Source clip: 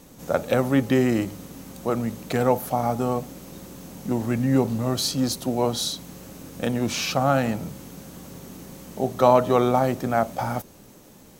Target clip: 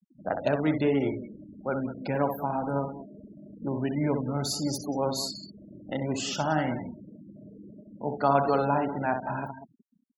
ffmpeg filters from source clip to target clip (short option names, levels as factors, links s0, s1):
-filter_complex "[0:a]afftfilt=real='re*pow(10,6/40*sin(2*PI*(1.5*log(max(b,1)*sr/1024/100)/log(2)-(2.7)*(pts-256)/sr)))':imag='im*pow(10,6/40*sin(2*PI*(1.5*log(max(b,1)*sr/1024/100)/log(2)-(2.7)*(pts-256)/sr)))':win_size=1024:overlap=0.75,asplit=2[s0][s1];[s1]aecho=0:1:72|210|215:0.447|0.141|0.224[s2];[s0][s2]amix=inputs=2:normalize=0,afftfilt=real='re*gte(hypot(re,im),0.0355)':imag='im*gte(hypot(re,im),0.0355)':win_size=1024:overlap=0.75,asetrate=49392,aresample=44100,volume=0.473"